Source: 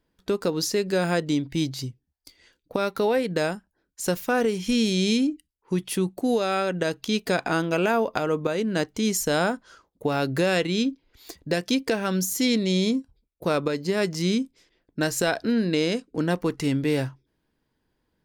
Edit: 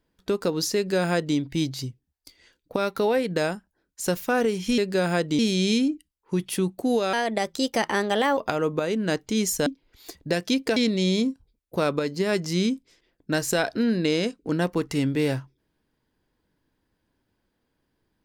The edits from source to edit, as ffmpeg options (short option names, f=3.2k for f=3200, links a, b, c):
-filter_complex "[0:a]asplit=7[a][b][c][d][e][f][g];[a]atrim=end=4.782[h];[b]atrim=start=0.758:end=1.372[i];[c]atrim=start=4.778:end=6.524[j];[d]atrim=start=6.52:end=8.05,asetpts=PTS-STARTPTS,asetrate=54243,aresample=44100,atrim=end_sample=54856,asetpts=PTS-STARTPTS[k];[e]atrim=start=8.046:end=9.342[l];[f]atrim=start=10.868:end=11.972[m];[g]atrim=start=12.448[n];[h][i]acrossfade=d=0.004:c1=hsin:c2=hsin[o];[o][j]acrossfade=d=0.004:c1=hsin:c2=hsin[p];[p][k]acrossfade=d=0.004:c1=hsin:c2=hsin[q];[q][l]acrossfade=d=0.004:c1=hsin:c2=hsin[r];[r][m]acrossfade=d=0.004:c1=hsin:c2=hsin[s];[s][n]acrossfade=d=0.004:c1=hsin:c2=hsin"